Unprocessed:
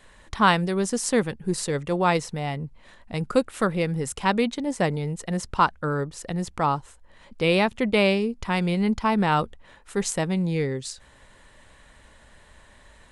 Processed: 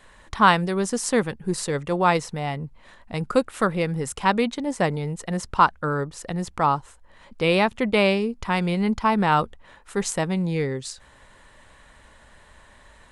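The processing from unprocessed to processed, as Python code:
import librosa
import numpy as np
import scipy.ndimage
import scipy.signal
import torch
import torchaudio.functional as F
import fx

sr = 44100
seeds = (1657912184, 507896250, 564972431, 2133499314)

y = fx.peak_eq(x, sr, hz=1100.0, db=3.5, octaves=1.4)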